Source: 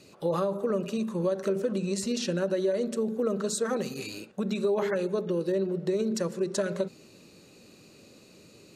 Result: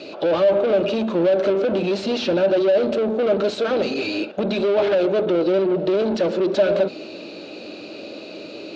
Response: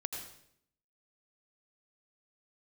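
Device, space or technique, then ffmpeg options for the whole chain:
overdrive pedal into a guitar cabinet: -filter_complex "[0:a]asplit=2[a][b];[b]highpass=f=720:p=1,volume=28dB,asoftclip=type=tanh:threshold=-15.5dB[c];[a][c]amix=inputs=2:normalize=0,lowpass=f=6.2k:p=1,volume=-6dB,highpass=78,equalizer=f=140:t=q:w=4:g=-6,equalizer=f=310:t=q:w=4:g=9,equalizer=f=620:t=q:w=4:g=9,equalizer=f=1.1k:t=q:w=4:g=-7,equalizer=f=1.9k:t=q:w=4:g=-9,lowpass=f=4.2k:w=0.5412,lowpass=f=4.2k:w=1.3066"

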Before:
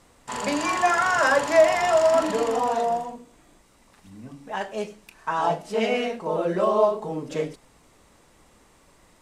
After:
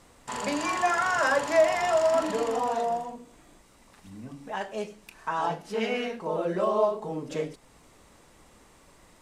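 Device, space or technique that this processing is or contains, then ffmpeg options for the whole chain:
parallel compression: -filter_complex "[0:a]asplit=2[a][b];[b]acompressor=threshold=-39dB:ratio=6,volume=-1dB[c];[a][c]amix=inputs=2:normalize=0,asettb=1/sr,asplit=3[d][e][f];[d]atrim=end=5.464[g];[e]atrim=start=5.46:end=6.22,asetpts=PTS-STARTPTS,afade=t=in:d=0.004:c=qsin,afade=t=out:st=0.756:d=0.004:c=qsin,equalizer=f=630:t=o:w=0.33:g=-8,equalizer=f=1.6k:t=o:w=0.33:g=4,equalizer=f=8k:t=o:w=0.33:g=-4[h];[f]atrim=start=6.216[i];[g][h]acrossfade=d=0.004:c1=hsin:c2=qsin[j];[j][i]acrossfade=d=0.004:c1=qsin:c2=hsin,volume=-5dB"

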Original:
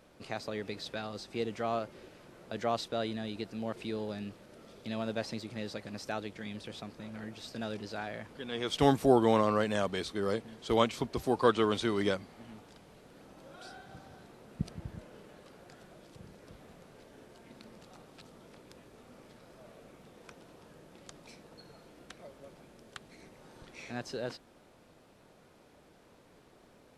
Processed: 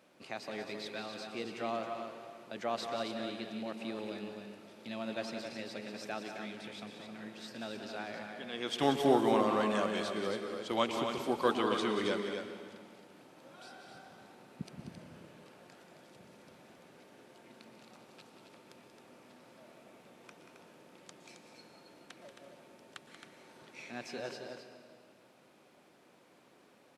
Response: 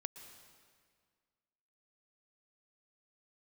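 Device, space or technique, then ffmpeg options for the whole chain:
stadium PA: -filter_complex "[0:a]highpass=190,equalizer=f=2.5k:t=o:w=0.52:g=3.5,bandreject=f=450:w=12,aecho=1:1:183.7|268.2:0.355|0.447[a];[1:a]atrim=start_sample=2205[b];[a][b]afir=irnorm=-1:irlink=0"

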